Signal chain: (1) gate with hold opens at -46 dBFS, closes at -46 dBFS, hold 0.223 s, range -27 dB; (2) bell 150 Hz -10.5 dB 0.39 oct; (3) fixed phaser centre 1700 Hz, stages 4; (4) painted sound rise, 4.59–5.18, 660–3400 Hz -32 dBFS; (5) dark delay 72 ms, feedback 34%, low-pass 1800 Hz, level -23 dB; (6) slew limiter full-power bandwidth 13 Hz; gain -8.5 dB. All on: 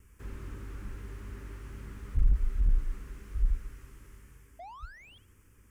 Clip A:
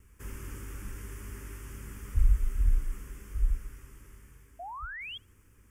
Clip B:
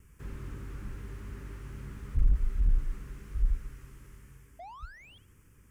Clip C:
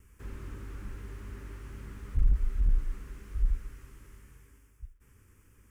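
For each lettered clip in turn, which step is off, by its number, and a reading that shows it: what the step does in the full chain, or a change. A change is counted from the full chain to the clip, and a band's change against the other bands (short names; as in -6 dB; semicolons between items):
6, distortion -11 dB; 2, 250 Hz band +1.5 dB; 4, 1 kHz band -5.5 dB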